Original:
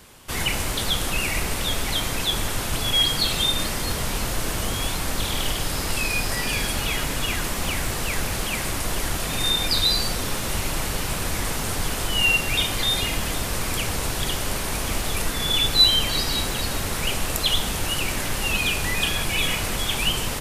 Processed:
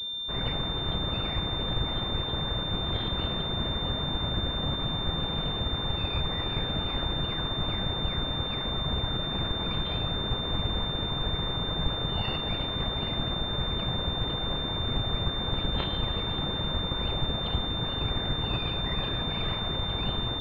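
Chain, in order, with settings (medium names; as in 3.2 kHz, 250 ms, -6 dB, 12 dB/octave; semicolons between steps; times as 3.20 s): distance through air 140 m; whisper effect; class-D stage that switches slowly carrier 3.6 kHz; trim -3.5 dB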